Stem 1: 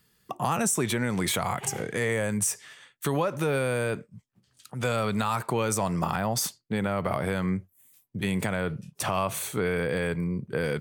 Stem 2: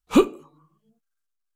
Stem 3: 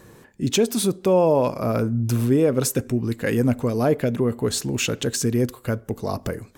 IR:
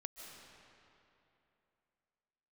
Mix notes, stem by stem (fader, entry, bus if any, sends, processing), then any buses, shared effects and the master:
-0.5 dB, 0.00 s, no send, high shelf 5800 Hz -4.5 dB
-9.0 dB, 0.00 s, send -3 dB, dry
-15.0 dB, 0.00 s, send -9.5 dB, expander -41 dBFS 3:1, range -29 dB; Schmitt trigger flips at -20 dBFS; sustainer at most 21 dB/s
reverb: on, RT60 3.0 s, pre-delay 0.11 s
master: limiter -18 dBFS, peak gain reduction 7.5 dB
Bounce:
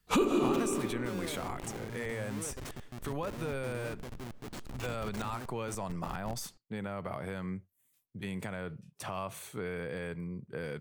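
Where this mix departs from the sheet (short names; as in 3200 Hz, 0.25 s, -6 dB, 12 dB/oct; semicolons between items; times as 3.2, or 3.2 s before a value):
stem 1 -0.5 dB -> -10.5 dB; stem 2 -9.0 dB -> +2.0 dB; stem 3 -15.0 dB -> -21.5 dB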